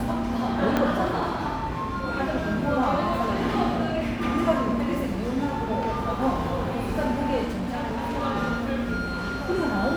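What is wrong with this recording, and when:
0.77 s: pop -10 dBFS
7.45–8.16 s: clipped -25 dBFS

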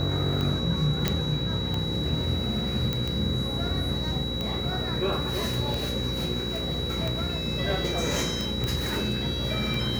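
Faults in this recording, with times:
buzz 60 Hz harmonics 9 -33 dBFS
tick 45 rpm -17 dBFS
whine 3.9 kHz -32 dBFS
1.08 s: pop -9 dBFS
2.93 s: pop -14 dBFS
8.64 s: pop -16 dBFS

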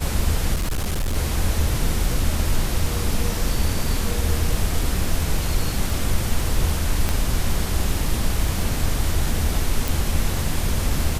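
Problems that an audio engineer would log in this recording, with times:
crackle 11 per s -27 dBFS
0.54–1.16 s: clipped -19 dBFS
7.09 s: pop -8 dBFS
9.88 s: pop

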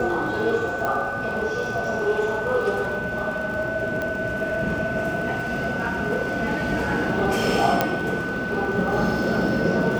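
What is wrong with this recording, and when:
crackle 44 per s -32 dBFS
whine 1.5 kHz -28 dBFS
0.85 s: pop -13 dBFS
4.02 s: pop -15 dBFS
7.81 s: pop -5 dBFS

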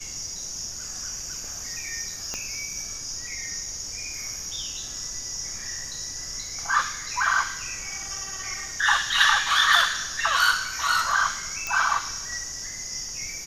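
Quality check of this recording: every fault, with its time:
2.34 s: pop -16 dBFS
11.67 s: pop -13 dBFS

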